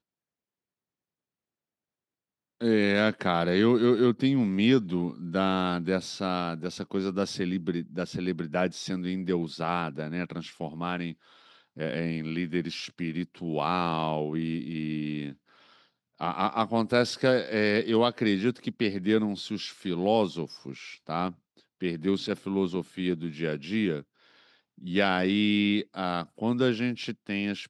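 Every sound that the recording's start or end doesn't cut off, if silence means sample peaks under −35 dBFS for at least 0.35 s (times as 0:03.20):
0:02.61–0:11.12
0:11.77–0:15.32
0:16.21–0:21.30
0:21.82–0:24.00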